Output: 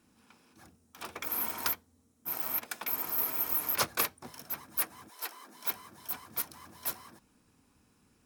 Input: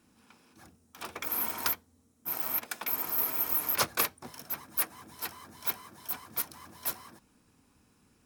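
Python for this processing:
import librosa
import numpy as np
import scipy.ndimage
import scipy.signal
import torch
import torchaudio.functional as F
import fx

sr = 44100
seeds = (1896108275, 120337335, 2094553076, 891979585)

y = fx.highpass(x, sr, hz=fx.line((5.08, 490.0), (5.72, 150.0)), slope=24, at=(5.08, 5.72), fade=0.02)
y = F.gain(torch.from_numpy(y), -1.5).numpy()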